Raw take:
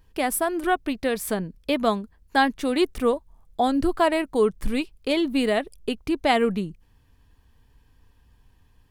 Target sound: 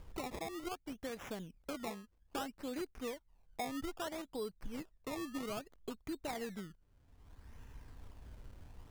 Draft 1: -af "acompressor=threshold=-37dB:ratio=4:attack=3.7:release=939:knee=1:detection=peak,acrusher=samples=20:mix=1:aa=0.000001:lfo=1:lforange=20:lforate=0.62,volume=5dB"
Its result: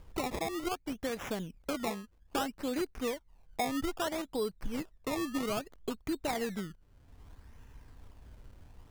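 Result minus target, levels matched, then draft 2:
downward compressor: peak gain reduction −7.5 dB
-af "acompressor=threshold=-47dB:ratio=4:attack=3.7:release=939:knee=1:detection=peak,acrusher=samples=20:mix=1:aa=0.000001:lfo=1:lforange=20:lforate=0.62,volume=5dB"

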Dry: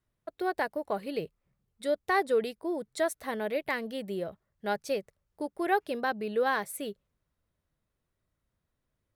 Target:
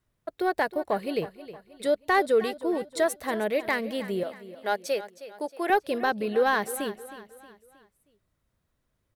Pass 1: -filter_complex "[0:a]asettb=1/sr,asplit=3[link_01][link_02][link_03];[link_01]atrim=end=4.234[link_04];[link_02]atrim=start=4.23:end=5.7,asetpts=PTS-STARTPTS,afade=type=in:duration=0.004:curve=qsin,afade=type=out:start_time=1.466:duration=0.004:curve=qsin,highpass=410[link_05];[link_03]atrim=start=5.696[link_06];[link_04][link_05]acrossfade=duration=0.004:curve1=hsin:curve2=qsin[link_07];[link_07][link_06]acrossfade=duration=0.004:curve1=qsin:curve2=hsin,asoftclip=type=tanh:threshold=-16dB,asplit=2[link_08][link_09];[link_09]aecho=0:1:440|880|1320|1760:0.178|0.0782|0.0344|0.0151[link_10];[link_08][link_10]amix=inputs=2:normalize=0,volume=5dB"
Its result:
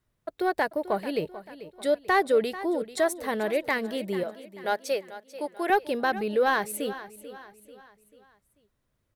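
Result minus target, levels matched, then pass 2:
echo 125 ms late
-filter_complex "[0:a]asettb=1/sr,asplit=3[link_01][link_02][link_03];[link_01]atrim=end=4.234[link_04];[link_02]atrim=start=4.23:end=5.7,asetpts=PTS-STARTPTS,afade=type=in:duration=0.004:curve=qsin,afade=type=out:start_time=1.466:duration=0.004:curve=qsin,highpass=410[link_05];[link_03]atrim=start=5.696[link_06];[link_04][link_05]acrossfade=duration=0.004:curve1=hsin:curve2=qsin[link_07];[link_07][link_06]acrossfade=duration=0.004:curve1=qsin:curve2=hsin,asoftclip=type=tanh:threshold=-16dB,asplit=2[link_08][link_09];[link_09]aecho=0:1:315|630|945|1260:0.178|0.0782|0.0344|0.0151[link_10];[link_08][link_10]amix=inputs=2:normalize=0,volume=5dB"

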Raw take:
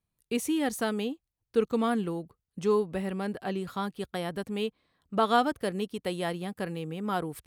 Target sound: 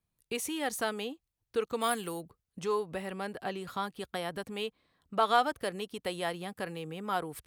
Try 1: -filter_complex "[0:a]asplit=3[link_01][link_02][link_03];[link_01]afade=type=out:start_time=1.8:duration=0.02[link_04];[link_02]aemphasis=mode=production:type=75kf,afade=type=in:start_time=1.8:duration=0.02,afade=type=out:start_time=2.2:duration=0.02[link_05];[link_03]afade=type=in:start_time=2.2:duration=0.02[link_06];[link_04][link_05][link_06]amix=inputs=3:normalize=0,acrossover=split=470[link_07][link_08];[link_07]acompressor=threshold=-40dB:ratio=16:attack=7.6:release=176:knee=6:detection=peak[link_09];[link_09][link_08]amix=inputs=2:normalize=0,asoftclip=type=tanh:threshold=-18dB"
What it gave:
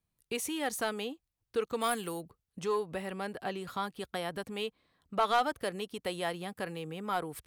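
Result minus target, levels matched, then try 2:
soft clipping: distortion +14 dB
-filter_complex "[0:a]asplit=3[link_01][link_02][link_03];[link_01]afade=type=out:start_time=1.8:duration=0.02[link_04];[link_02]aemphasis=mode=production:type=75kf,afade=type=in:start_time=1.8:duration=0.02,afade=type=out:start_time=2.2:duration=0.02[link_05];[link_03]afade=type=in:start_time=2.2:duration=0.02[link_06];[link_04][link_05][link_06]amix=inputs=3:normalize=0,acrossover=split=470[link_07][link_08];[link_07]acompressor=threshold=-40dB:ratio=16:attack=7.6:release=176:knee=6:detection=peak[link_09];[link_09][link_08]amix=inputs=2:normalize=0,asoftclip=type=tanh:threshold=-8.5dB"

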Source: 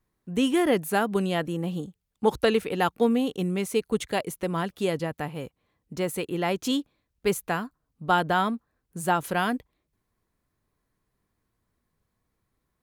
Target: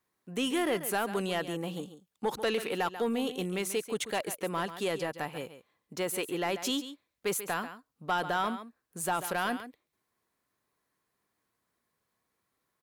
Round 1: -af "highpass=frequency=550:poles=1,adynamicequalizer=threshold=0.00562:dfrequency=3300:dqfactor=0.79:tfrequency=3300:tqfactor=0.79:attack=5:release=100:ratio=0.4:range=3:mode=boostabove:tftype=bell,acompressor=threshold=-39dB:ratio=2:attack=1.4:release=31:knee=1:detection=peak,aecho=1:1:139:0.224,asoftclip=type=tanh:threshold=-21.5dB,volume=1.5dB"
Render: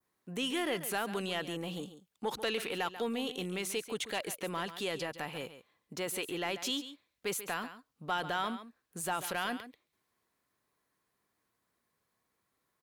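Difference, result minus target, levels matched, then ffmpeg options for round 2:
downward compressor: peak gain reduction +6 dB; 4,000 Hz band +3.5 dB
-af "highpass=frequency=550:poles=1,acompressor=threshold=-28.5dB:ratio=2:attack=1.4:release=31:knee=1:detection=peak,aecho=1:1:139:0.224,asoftclip=type=tanh:threshold=-21.5dB,volume=1.5dB"

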